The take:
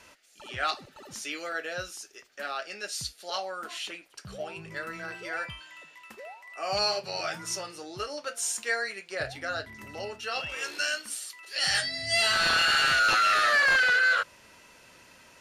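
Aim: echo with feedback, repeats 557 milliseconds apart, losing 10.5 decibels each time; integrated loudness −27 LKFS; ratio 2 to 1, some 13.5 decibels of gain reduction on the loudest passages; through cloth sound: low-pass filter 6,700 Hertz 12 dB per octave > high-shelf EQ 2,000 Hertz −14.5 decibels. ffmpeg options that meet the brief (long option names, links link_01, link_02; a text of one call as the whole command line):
ffmpeg -i in.wav -af "acompressor=threshold=-46dB:ratio=2,lowpass=6700,highshelf=frequency=2000:gain=-14.5,aecho=1:1:557|1114|1671:0.299|0.0896|0.0269,volume=18.5dB" out.wav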